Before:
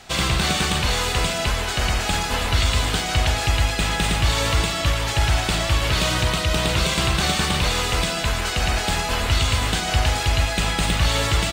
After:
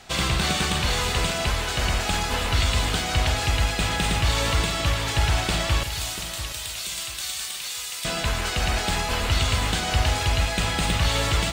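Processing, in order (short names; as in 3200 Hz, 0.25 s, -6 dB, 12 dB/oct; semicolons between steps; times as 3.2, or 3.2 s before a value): 5.83–8.05 differentiator; lo-fi delay 0.69 s, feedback 35%, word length 7-bit, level -11 dB; gain -2.5 dB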